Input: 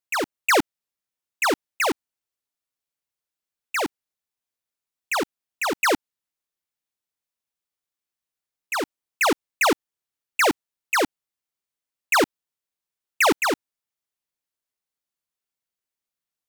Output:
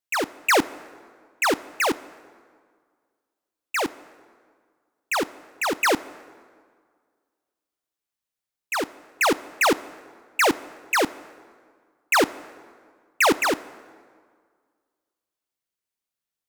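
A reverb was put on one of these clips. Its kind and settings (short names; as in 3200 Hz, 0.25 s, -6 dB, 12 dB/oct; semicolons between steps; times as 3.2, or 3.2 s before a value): plate-style reverb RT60 1.9 s, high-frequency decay 0.65×, DRR 17.5 dB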